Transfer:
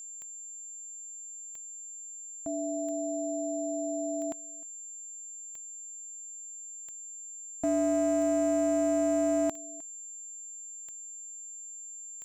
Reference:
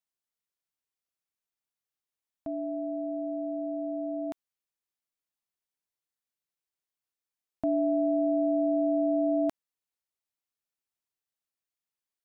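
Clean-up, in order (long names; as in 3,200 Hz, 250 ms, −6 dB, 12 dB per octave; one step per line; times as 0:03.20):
clipped peaks rebuilt −22 dBFS
click removal
notch filter 7,300 Hz, Q 30
echo removal 308 ms −22 dB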